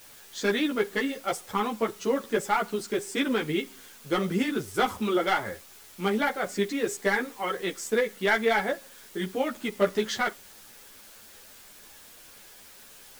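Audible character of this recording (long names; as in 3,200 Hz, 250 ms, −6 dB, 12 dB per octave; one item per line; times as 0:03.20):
a quantiser's noise floor 8 bits, dither triangular
a shimmering, thickened sound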